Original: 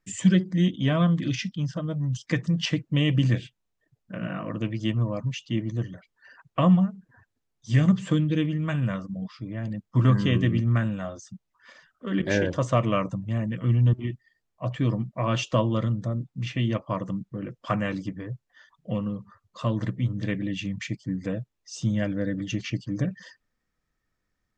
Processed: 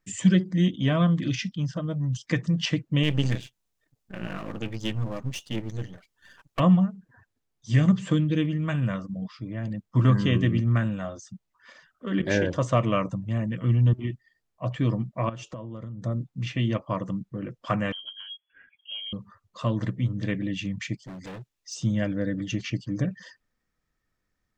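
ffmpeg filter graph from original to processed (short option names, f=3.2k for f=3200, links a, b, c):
-filter_complex "[0:a]asettb=1/sr,asplit=3[a][b][c];[a]atrim=end=3.034[d];[b]atrim=start=3.03:end=6.6,asetpts=PTS-STARTPTS,afade=t=in:d=0.004:c=qsin,afade=t=out:st=3.566:d=0.004:c=qsin,aeval=exprs='if(lt(val(0),0),0.251*val(0),val(0))':c=same,highshelf=f=4.2k:g=8.5[e];[c]atrim=start=6.596[f];[d][e]acrossfade=d=0.004:c1=hsin:c2=qsin[g];[g][f]acrossfade=d=0.004:c1=qsin:c2=hsin,asettb=1/sr,asplit=3[h][i][j];[h]atrim=end=15.294[k];[i]atrim=start=15.29:end=16.04,asetpts=PTS-STARTPTS,afade=t=in:d=0.004:c=qsin,afade=t=out:st=0.746:d=0.004:c=qsin,equalizer=f=3.5k:t=o:w=2:g=-9.5,acompressor=threshold=-33dB:ratio=12:attack=3.2:release=140:knee=1:detection=peak[l];[j]atrim=start=16.036[m];[k][l]acrossfade=d=0.004:c1=hsin:c2=qsin[n];[n][m]acrossfade=d=0.004:c1=qsin:c2=hsin,asettb=1/sr,asplit=3[o][p][q];[o]atrim=end=17.924[r];[p]atrim=start=17.92:end=19.13,asetpts=PTS-STARTPTS,afade=t=in:d=0.004:c=qsin,afade=t=out:st=1.206:d=0.004:c=qsin,acompressor=threshold=-48dB:ratio=1.5:attack=3.2:release=140:knee=1:detection=peak,lowpass=f=2.9k:t=q:w=0.5098,lowpass=f=2.9k:t=q:w=0.6013,lowpass=f=2.9k:t=q:w=0.9,lowpass=f=2.9k:t=q:w=2.563,afreqshift=-3400[s];[q]atrim=start=19.126[t];[r][s]acrossfade=d=0.004:c1=hsin:c2=qsin[u];[u][t]acrossfade=d=0.004:c1=qsin:c2=hsin,asettb=1/sr,asplit=3[v][w][x];[v]atrim=end=21.024[y];[w]atrim=start=21.02:end=21.74,asetpts=PTS-STARTPTS,afade=t=in:d=0.004:c=qsin,afade=t=out:st=0.716:d=0.004:c=qsin,volume=33dB,asoftclip=hard,volume=-33dB,tiltshelf=f=1.4k:g=-4.5[z];[x]atrim=start=21.736[aa];[y][z]acrossfade=d=0.004:c1=hsin:c2=qsin[ab];[ab][aa]acrossfade=d=0.004:c1=qsin:c2=hsin"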